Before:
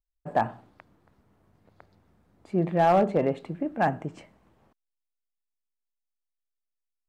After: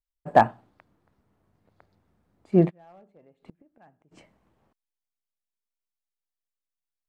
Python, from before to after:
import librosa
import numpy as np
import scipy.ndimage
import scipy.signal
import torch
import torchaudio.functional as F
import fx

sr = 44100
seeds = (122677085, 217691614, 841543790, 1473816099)

y = fx.gate_flip(x, sr, shuts_db=-27.0, range_db=-27, at=(2.69, 4.11), fade=0.02)
y = fx.upward_expand(y, sr, threshold_db=-47.0, expansion=1.5)
y = F.gain(torch.from_numpy(y), 8.5).numpy()